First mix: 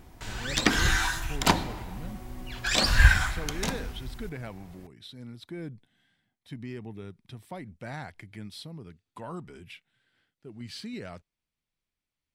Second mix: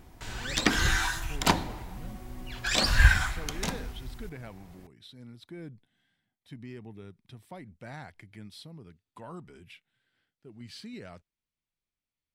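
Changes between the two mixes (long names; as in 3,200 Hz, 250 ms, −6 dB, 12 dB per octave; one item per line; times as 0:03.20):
speech −4.5 dB
background: send −7.0 dB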